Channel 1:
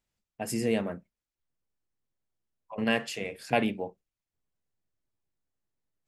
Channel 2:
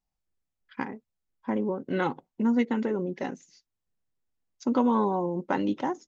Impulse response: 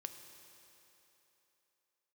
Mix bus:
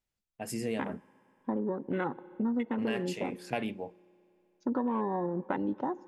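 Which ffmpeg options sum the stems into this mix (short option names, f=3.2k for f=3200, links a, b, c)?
-filter_complex "[0:a]acontrast=36,volume=-10.5dB,asplit=2[a][b];[b]volume=-20dB[c];[1:a]lowpass=6.1k,afwtdn=0.0141,volume=-2.5dB,asplit=2[d][e];[e]volume=-10.5dB[f];[2:a]atrim=start_sample=2205[g];[c][f]amix=inputs=2:normalize=0[h];[h][g]afir=irnorm=-1:irlink=0[i];[a][d][i]amix=inputs=3:normalize=0,acompressor=threshold=-28dB:ratio=4"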